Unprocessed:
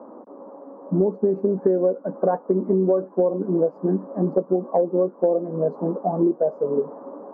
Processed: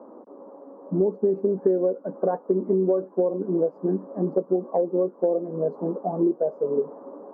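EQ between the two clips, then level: peaking EQ 400 Hz +4 dB 0.77 oct; -5.0 dB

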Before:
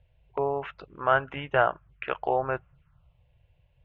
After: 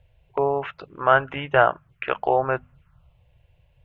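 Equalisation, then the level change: hum notches 50/100/150/200/250 Hz; +5.5 dB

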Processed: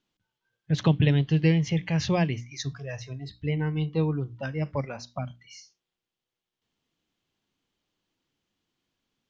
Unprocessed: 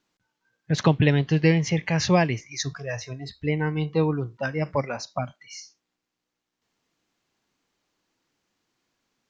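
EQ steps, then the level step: bass shelf 290 Hz +10.5 dB; peaking EQ 3.2 kHz +8.5 dB 0.55 oct; hum notches 60/120/180/240/300 Hz; -8.5 dB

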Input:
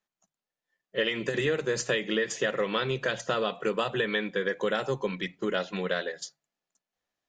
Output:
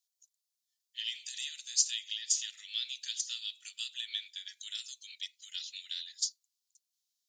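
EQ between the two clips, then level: inverse Chebyshev high-pass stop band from 930 Hz, stop band 70 dB; +8.0 dB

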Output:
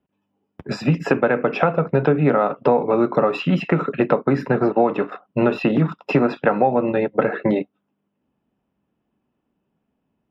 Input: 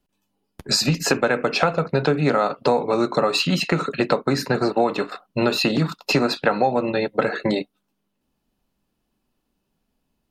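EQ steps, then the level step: Savitzky-Golay filter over 25 samples; high-pass 90 Hz; tilt shelf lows +3.5 dB, about 1.3 kHz; 0.0 dB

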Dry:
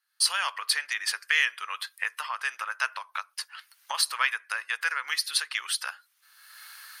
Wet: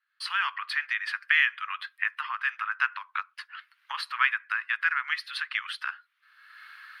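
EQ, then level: high-pass 1.2 kHz 24 dB/octave; distance through air 490 m; +7.0 dB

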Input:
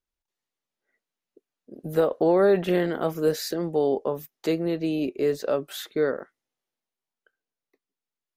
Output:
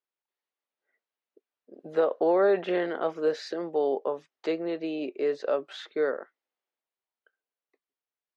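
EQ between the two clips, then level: high-pass 410 Hz 12 dB/octave; brick-wall FIR low-pass 12 kHz; distance through air 190 m; 0.0 dB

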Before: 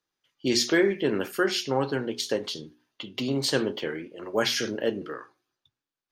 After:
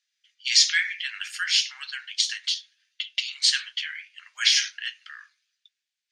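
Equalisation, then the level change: steep high-pass 1.8 kHz 36 dB/octave; low-pass 8 kHz 24 dB/octave; +8.5 dB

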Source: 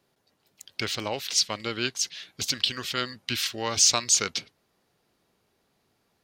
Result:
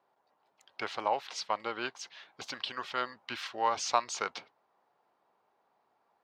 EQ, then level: band-pass filter 890 Hz, Q 2.4; +6.5 dB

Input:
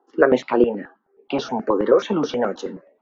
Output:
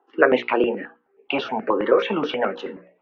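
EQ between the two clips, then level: resonant low-pass 2.6 kHz, resonance Q 3.2; bass shelf 190 Hz -8.5 dB; hum notches 60/120/180/240/300/360/420/480/540 Hz; 0.0 dB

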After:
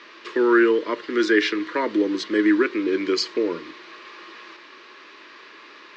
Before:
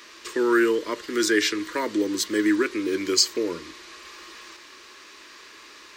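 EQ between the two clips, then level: high-pass 190 Hz 12 dB/octave; low-pass 4.5 kHz 12 dB/octave; distance through air 140 m; +4.0 dB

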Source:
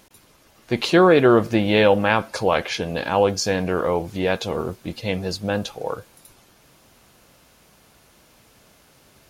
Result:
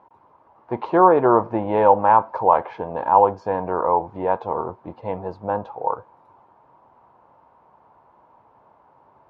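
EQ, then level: high-pass 93 Hz; resonant low-pass 940 Hz, resonance Q 6.7; peaking EQ 190 Hz -5.5 dB 1.2 oct; -3.0 dB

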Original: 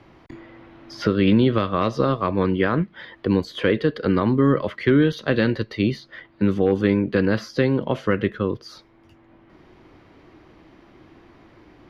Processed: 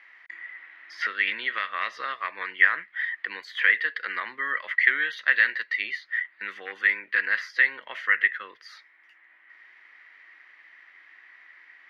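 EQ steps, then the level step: resonant high-pass 1.9 kHz, resonance Q 8.3; treble shelf 3.1 kHz -11 dB; 0.0 dB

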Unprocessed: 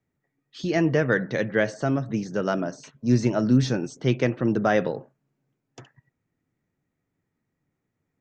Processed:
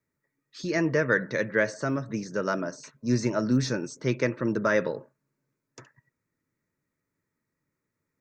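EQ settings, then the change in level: Butterworth band-stop 750 Hz, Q 3.9; bass shelf 470 Hz -8.5 dB; peaking EQ 3.1 kHz -14.5 dB 0.33 oct; +2.0 dB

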